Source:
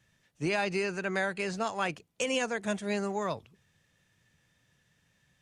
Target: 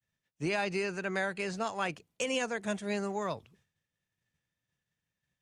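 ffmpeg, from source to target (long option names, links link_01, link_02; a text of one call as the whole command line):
ffmpeg -i in.wav -af "agate=range=-33dB:threshold=-59dB:ratio=3:detection=peak,volume=-2dB" out.wav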